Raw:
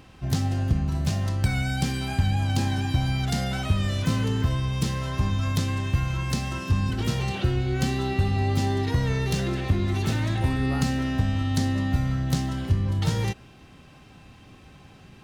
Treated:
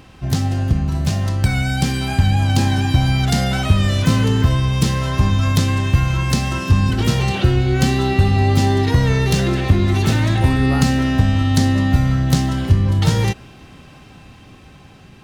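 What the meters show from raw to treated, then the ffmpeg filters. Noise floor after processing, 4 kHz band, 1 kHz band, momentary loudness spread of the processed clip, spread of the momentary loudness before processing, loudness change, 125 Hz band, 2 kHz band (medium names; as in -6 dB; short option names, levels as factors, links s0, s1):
-43 dBFS, +8.5 dB, +9.0 dB, 4 LU, 3 LU, +8.5 dB, +8.5 dB, +8.5 dB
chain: -af "dynaudnorm=f=810:g=5:m=1.41,volume=2"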